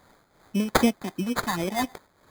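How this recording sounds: phasing stages 4, 3.8 Hz, lowest notch 340–3500 Hz; a quantiser's noise floor 10-bit, dither triangular; tremolo triangle 2.7 Hz, depth 70%; aliases and images of a low sample rate 2.8 kHz, jitter 0%

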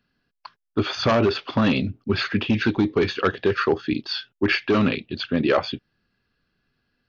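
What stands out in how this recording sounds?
noise floor -79 dBFS; spectral tilt -4.0 dB/octave

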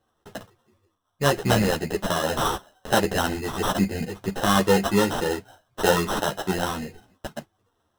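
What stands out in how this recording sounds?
aliases and images of a low sample rate 2.3 kHz, jitter 0%; a shimmering, thickened sound

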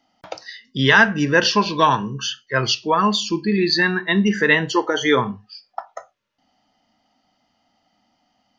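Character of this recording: noise floor -68 dBFS; spectral tilt -4.0 dB/octave

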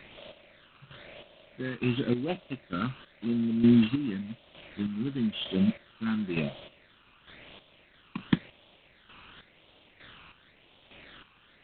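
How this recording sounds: a quantiser's noise floor 8-bit, dither triangular; chopped level 1.1 Hz, depth 65%, duty 35%; phasing stages 12, 0.95 Hz, lowest notch 610–1700 Hz; G.726

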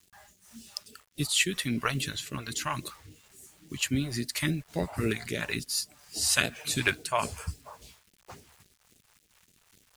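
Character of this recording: a quantiser's noise floor 10-bit, dither none; phasing stages 2, 3.6 Hz, lowest notch 230–1100 Hz; random flutter of the level

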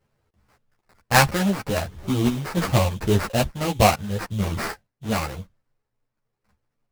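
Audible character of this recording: random-step tremolo; aliases and images of a low sample rate 3.4 kHz, jitter 20%; a shimmering, thickened sound

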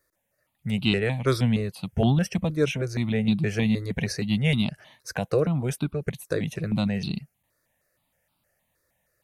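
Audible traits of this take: notches that jump at a steady rate 6.4 Hz 800–1800 Hz

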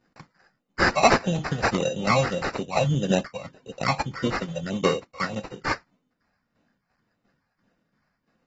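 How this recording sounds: tremolo saw down 2.9 Hz, depth 70%; phasing stages 4, 1.7 Hz, lowest notch 320–4000 Hz; aliases and images of a low sample rate 3.3 kHz, jitter 0%; AAC

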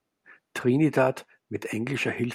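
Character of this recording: noise floor -81 dBFS; spectral tilt -6.0 dB/octave

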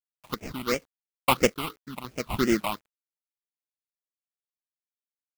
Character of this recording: aliases and images of a low sample rate 1.7 kHz, jitter 20%; phasing stages 6, 2.9 Hz, lowest notch 430–1100 Hz; a quantiser's noise floor 10-bit, dither none; chopped level 0.87 Hz, depth 60%, duty 30%

